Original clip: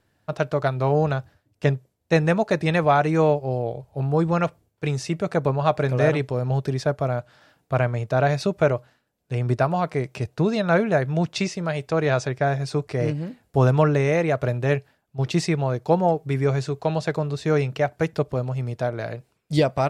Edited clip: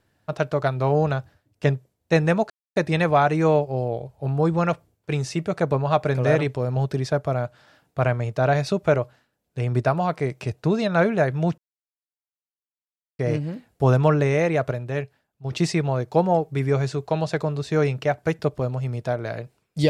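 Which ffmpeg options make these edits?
ffmpeg -i in.wav -filter_complex "[0:a]asplit=6[link_01][link_02][link_03][link_04][link_05][link_06];[link_01]atrim=end=2.5,asetpts=PTS-STARTPTS,afade=type=out:start_time=2.496:duration=0.004:curve=hsin,apad=pad_dur=0.26[link_07];[link_02]atrim=start=2.5:end=11.32,asetpts=PTS-STARTPTS,afade=type=in:duration=0.004:curve=hsin,afade=type=out:start_time=8.816:duration=0.004:curve=hsin[link_08];[link_03]atrim=start=11.32:end=12.93,asetpts=PTS-STARTPTS,volume=0[link_09];[link_04]atrim=start=12.93:end=14.452,asetpts=PTS-STARTPTS,afade=type=in:duration=0.004:curve=hsin[link_10];[link_05]atrim=start=14.448:end=15.252,asetpts=PTS-STARTPTS,volume=-5.5dB[link_11];[link_06]atrim=start=15.248[link_12];[link_07][link_08][link_09][link_10]concat=n=4:v=0:a=1[link_13];[link_13][link_11]acrossfade=duration=0.004:curve1=hsin:curve2=hsin[link_14];[link_14][link_12]acrossfade=duration=0.004:curve1=hsin:curve2=hsin" out.wav

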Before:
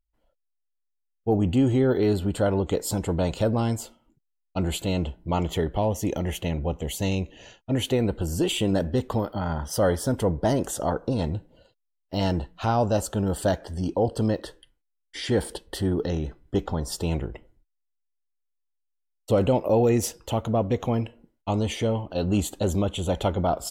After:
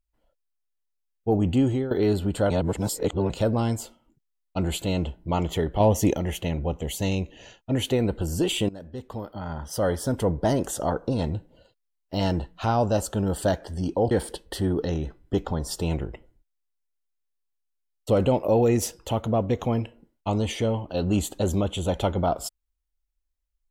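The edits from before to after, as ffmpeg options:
ffmpeg -i in.wav -filter_complex "[0:a]asplit=8[link_01][link_02][link_03][link_04][link_05][link_06][link_07][link_08];[link_01]atrim=end=1.91,asetpts=PTS-STARTPTS,afade=type=out:start_time=1.53:duration=0.38:curve=qsin:silence=0.188365[link_09];[link_02]atrim=start=1.91:end=2.502,asetpts=PTS-STARTPTS,afade=type=in:duration=0.004:curve=hsin:silence=0.188365[link_10];[link_03]atrim=start=2.498:end=3.302,asetpts=PTS-STARTPTS,areverse[link_11];[link_04]atrim=start=3.298:end=5.802[link_12];[link_05]atrim=start=5.798:end=6.132,asetpts=PTS-STARTPTS,volume=5.5dB[link_13];[link_06]atrim=start=6.128:end=8.69,asetpts=PTS-STARTPTS,afade=type=out:start_time=2.558:duration=0.004:curve=hsin:silence=0.0944061[link_14];[link_07]atrim=start=8.69:end=14.112,asetpts=PTS-STARTPTS,afade=type=in:duration=1.6:silence=0.0944061[link_15];[link_08]atrim=start=15.318[link_16];[link_09][link_10]concat=n=2:v=0:a=1[link_17];[link_17][link_11]acrossfade=duration=0.004:curve1=hsin:curve2=hsin[link_18];[link_18][link_12]acrossfade=duration=0.004:curve1=hsin:curve2=hsin[link_19];[link_19][link_13]acrossfade=duration=0.004:curve1=hsin:curve2=hsin[link_20];[link_14][link_15]concat=n=2:v=0:a=1[link_21];[link_20][link_21]acrossfade=duration=0.004:curve1=hsin:curve2=hsin[link_22];[link_22][link_16]acrossfade=duration=0.004:curve1=hsin:curve2=hsin" out.wav

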